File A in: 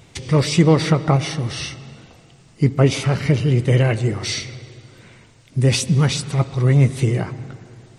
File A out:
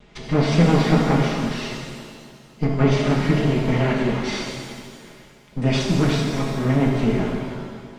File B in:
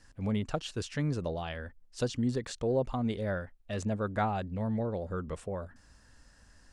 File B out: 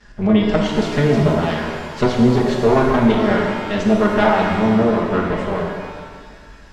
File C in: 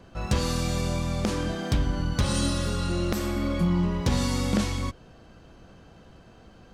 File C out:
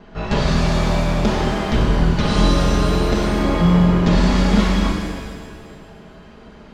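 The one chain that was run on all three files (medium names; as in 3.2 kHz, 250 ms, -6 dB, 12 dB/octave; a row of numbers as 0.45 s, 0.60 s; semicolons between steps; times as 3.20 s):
comb filter that takes the minimum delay 4.8 ms; distance through air 150 m; pitch-shifted reverb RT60 1.7 s, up +7 st, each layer -8 dB, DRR -0.5 dB; peak normalisation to -3 dBFS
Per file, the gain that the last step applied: -1.5 dB, +15.0 dB, +8.0 dB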